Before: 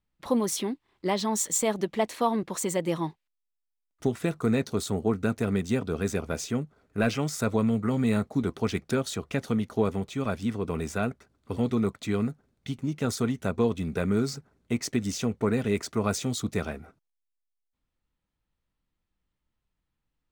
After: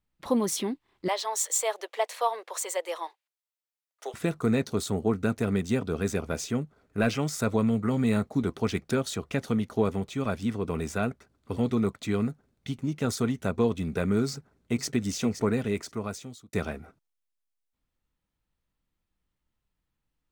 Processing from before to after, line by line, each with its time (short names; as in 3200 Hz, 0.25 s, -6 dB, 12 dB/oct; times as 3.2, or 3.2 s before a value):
1.08–4.14 steep high-pass 480 Hz
14.26–14.91 echo throw 0.52 s, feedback 20%, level -9.5 dB
15.45–16.53 fade out linear